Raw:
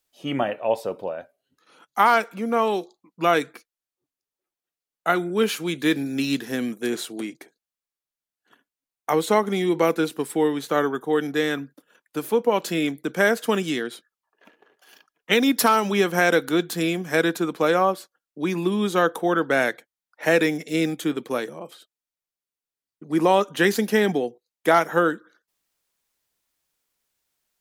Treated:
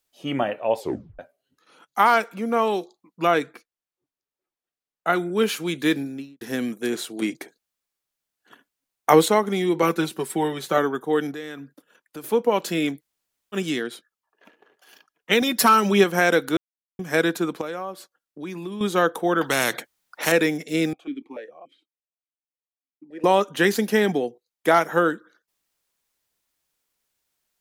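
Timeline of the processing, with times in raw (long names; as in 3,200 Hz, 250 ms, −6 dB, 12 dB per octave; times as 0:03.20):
0:00.79: tape stop 0.40 s
0:03.27–0:05.13: high-shelf EQ 3,900 Hz −6.5 dB
0:05.88–0:06.41: fade out and dull
0:07.22–0:09.28: clip gain +7 dB
0:09.82–0:10.78: comb filter 5.3 ms
0:11.31–0:12.24: downward compressor 2.5 to 1, threshold −36 dBFS
0:12.99–0:13.55: fill with room tone, crossfade 0.06 s
0:15.41–0:16.04: comb filter 5.3 ms, depth 67%
0:16.57–0:16.99: silence
0:17.61–0:18.81: downward compressor 2 to 1, threshold −37 dBFS
0:19.41–0:20.32: every bin compressed towards the loudest bin 2 to 1
0:20.93–0:23.24: formant filter that steps through the vowels 6.9 Hz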